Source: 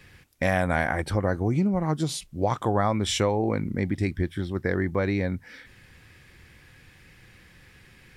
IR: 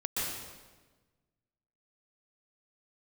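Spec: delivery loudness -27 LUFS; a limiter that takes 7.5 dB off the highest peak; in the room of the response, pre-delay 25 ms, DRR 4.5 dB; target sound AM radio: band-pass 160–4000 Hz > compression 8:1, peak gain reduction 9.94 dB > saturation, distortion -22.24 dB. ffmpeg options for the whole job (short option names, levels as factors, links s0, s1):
-filter_complex "[0:a]alimiter=limit=0.126:level=0:latency=1,asplit=2[s0][s1];[1:a]atrim=start_sample=2205,adelay=25[s2];[s1][s2]afir=irnorm=-1:irlink=0,volume=0.299[s3];[s0][s3]amix=inputs=2:normalize=0,highpass=160,lowpass=4000,acompressor=threshold=0.0316:ratio=8,asoftclip=threshold=0.0708,volume=2.82"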